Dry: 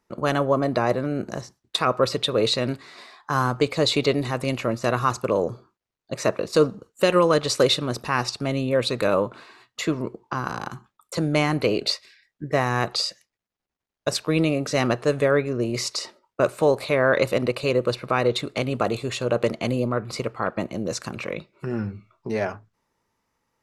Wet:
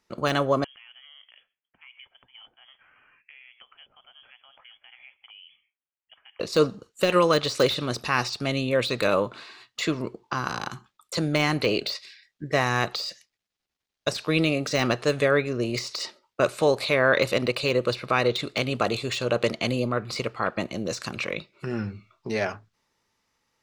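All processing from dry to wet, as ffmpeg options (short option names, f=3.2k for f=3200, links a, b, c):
-filter_complex "[0:a]asettb=1/sr,asplit=3[a][b][c];[a]atrim=end=0.644[d];[b]atrim=start=0.64:end=6.4,asetpts=PTS-STARTPTS,afade=t=in:d=0.004:c=qsin,afade=t=out:st=5.756:d=0.004:c=qsin,aderivative,acompressor=threshold=-50dB:ratio=5:attack=3.2:release=140:knee=1:detection=peak,lowpass=f=3k:t=q:w=0.5098,lowpass=f=3k:t=q:w=0.6013,lowpass=f=3k:t=q:w=0.9,lowpass=f=3k:t=q:w=2.563,afreqshift=-3500[e];[c]atrim=start=6.396[f];[d][e]acrossfade=d=0.004:c1=hsin:c2=qsin[g];[g][f]acrossfade=d=0.004:c1=qsin:c2=hsin,equalizer=f=4k:t=o:w=2.2:g=9.5,bandreject=f=960:w=27,deesser=0.55,volume=-2.5dB"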